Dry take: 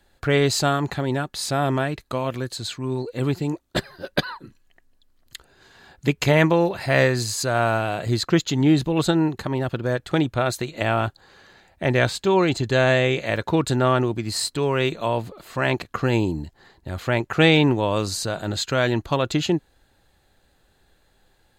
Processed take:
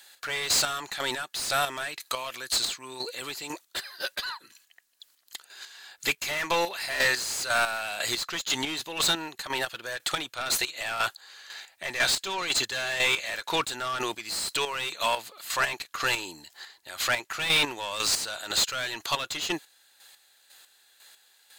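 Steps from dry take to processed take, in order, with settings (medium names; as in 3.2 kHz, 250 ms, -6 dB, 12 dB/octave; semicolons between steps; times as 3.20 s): pre-emphasis filter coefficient 0.97; overdrive pedal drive 29 dB, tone 4.5 kHz, clips at -13 dBFS; square tremolo 2 Hz, depth 60%, duty 30%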